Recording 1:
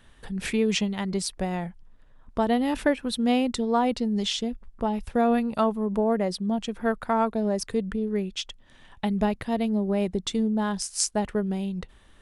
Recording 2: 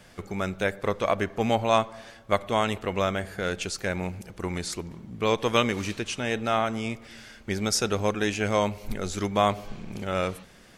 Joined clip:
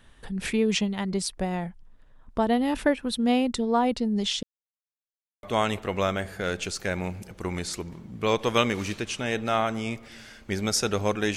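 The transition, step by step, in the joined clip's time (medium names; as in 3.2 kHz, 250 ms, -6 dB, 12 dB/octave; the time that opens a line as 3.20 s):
recording 1
4.43–5.43 s: mute
5.43 s: go over to recording 2 from 2.42 s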